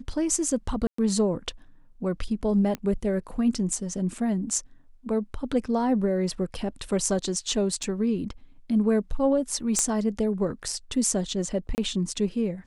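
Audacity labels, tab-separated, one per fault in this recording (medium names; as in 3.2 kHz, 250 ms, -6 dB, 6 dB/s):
0.870000	0.980000	dropout 114 ms
2.750000	2.750000	pop -17 dBFS
4.180000	4.180000	dropout 4.1 ms
7.830000	7.830000	dropout 3.6 ms
9.790000	9.790000	pop -10 dBFS
11.750000	11.780000	dropout 29 ms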